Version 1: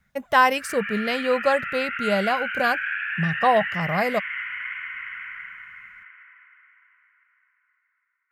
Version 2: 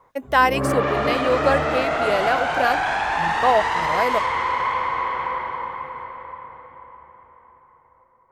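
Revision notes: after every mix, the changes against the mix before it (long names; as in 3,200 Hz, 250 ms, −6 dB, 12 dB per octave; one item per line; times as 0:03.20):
background: remove Chebyshev band-pass filter 1,400–2,900 Hz, order 4
master: add low shelf with overshoot 240 Hz −6.5 dB, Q 3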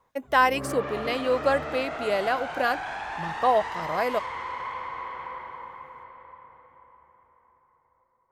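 speech −3.5 dB
background −11.5 dB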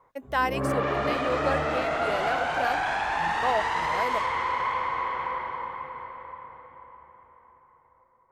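speech −5.5 dB
background +6.5 dB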